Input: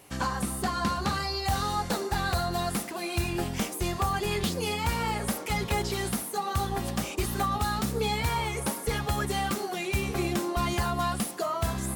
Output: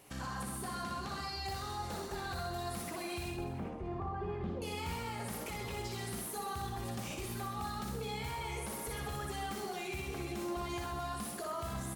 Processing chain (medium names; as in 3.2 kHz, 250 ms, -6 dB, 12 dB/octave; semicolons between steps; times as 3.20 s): 3.31–4.62 s: low-pass 1.1 kHz 12 dB/octave; peak limiter -28 dBFS, peak gain reduction 10.5 dB; on a send: reverse bouncing-ball echo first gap 60 ms, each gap 1.15×, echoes 5; on the sum: trim -6 dB